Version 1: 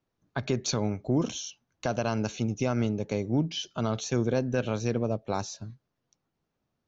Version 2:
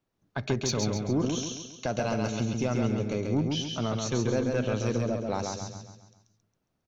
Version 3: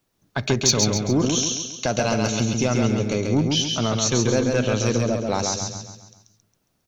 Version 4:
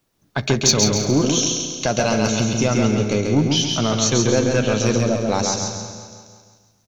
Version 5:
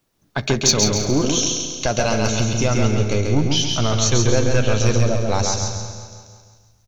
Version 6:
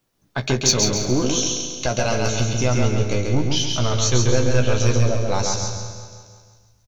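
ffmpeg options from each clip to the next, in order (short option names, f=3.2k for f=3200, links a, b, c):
-filter_complex "[0:a]asoftclip=type=tanh:threshold=-17.5dB,asplit=2[a][b];[b]aecho=0:1:136|272|408|544|680|816:0.631|0.29|0.134|0.0614|0.0283|0.013[c];[a][c]amix=inputs=2:normalize=0"
-af "highshelf=f=3.3k:g=9.5,volume=6.5dB"
-filter_complex "[0:a]asplit=2[a][b];[b]adelay=14,volume=-14dB[c];[a][c]amix=inputs=2:normalize=0,asplit=2[d][e];[e]aecho=0:1:172|344|516|688|860|1032:0.251|0.146|0.0845|0.049|0.0284|0.0165[f];[d][f]amix=inputs=2:normalize=0,volume=2.5dB"
-af "asubboost=boost=9:cutoff=69"
-filter_complex "[0:a]asplit=2[a][b];[b]adelay=16,volume=-7dB[c];[a][c]amix=inputs=2:normalize=0,volume=-2.5dB"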